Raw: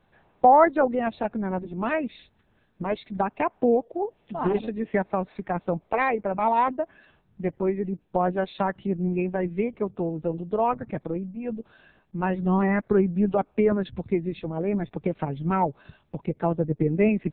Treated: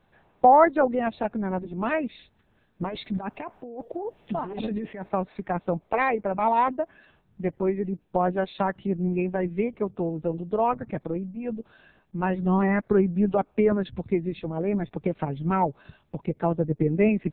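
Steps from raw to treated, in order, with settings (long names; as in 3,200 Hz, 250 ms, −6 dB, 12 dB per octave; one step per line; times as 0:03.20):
0:02.82–0:05.09: compressor whose output falls as the input rises −32 dBFS, ratio −1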